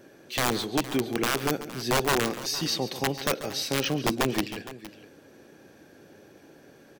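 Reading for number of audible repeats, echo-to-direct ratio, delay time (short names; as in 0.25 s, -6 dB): 2, -11.5 dB, 0.138 s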